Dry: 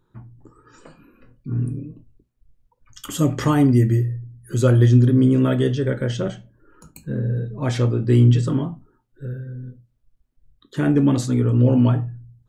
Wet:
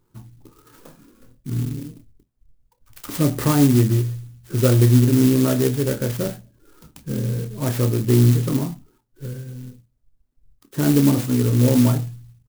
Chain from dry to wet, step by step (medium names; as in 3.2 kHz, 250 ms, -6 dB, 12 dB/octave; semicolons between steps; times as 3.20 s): doubling 28 ms -12 dB; sampling jitter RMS 0.1 ms